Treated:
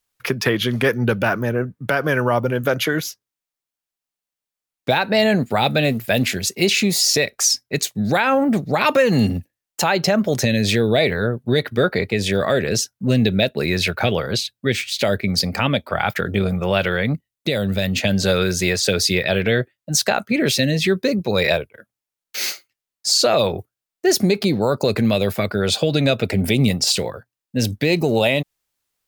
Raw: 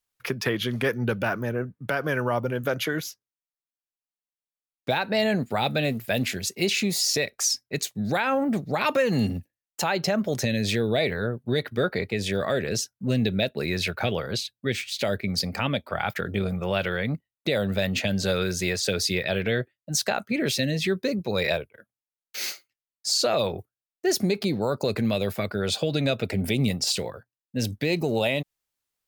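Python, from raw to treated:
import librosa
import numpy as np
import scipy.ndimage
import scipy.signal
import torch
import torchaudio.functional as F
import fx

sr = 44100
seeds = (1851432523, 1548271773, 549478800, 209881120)

y = fx.peak_eq(x, sr, hz=950.0, db=-6.0, octaves=2.9, at=(17.13, 18.03))
y = y * 10.0 ** (7.0 / 20.0)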